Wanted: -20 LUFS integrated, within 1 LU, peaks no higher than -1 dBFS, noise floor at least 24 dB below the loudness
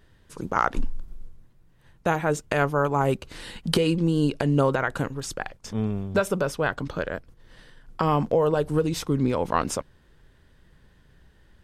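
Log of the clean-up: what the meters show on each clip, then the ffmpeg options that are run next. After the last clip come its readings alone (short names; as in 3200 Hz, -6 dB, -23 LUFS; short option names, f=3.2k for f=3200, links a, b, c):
loudness -25.5 LUFS; peak -7.5 dBFS; loudness target -20.0 LUFS
-> -af "volume=5.5dB"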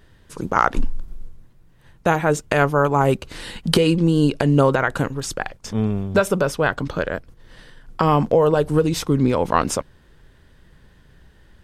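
loudness -20.0 LUFS; peak -2.0 dBFS; noise floor -53 dBFS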